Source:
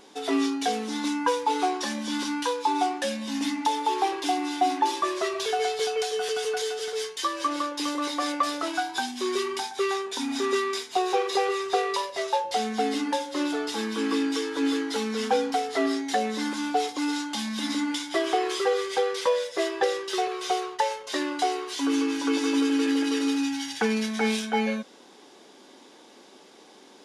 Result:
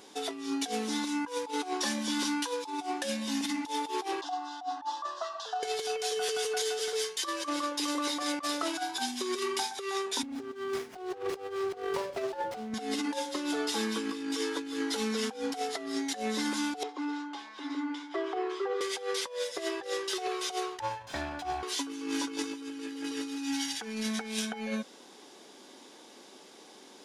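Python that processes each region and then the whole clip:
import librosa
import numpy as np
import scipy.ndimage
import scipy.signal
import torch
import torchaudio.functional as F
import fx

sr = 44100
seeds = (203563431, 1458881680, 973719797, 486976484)

y = fx.chain(x, sr, fx.highpass(hz=390.0, slope=12),
    fx.air_absorb(metres=170.0),
    fx.fixed_phaser(hz=940.0, stages=4), at=(4.21, 5.63))
y = fx.chain(y, sr, fx.riaa(side='playback'),
    fx.notch(hz=1000.0, q=11.0),
    fx.running_max(window=9), at=(10.23, 12.74))
y = fx.chain(y, sr, fx.cheby_ripple_highpass(hz=270.0, ripple_db=6),
    fx.spacing_loss(db_at_10k=25), at=(16.83, 18.81))
y = fx.chain(y, sr, fx.lower_of_two(delay_ms=1.2),
    fx.lowpass(hz=1500.0, slope=6), at=(20.79, 21.63))
y = scipy.signal.sosfilt(scipy.signal.butter(2, 60.0, 'highpass', fs=sr, output='sos'), y)
y = fx.high_shelf(y, sr, hz=5300.0, db=6.0)
y = fx.over_compress(y, sr, threshold_db=-28.0, ratio=-0.5)
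y = y * 10.0 ** (-4.5 / 20.0)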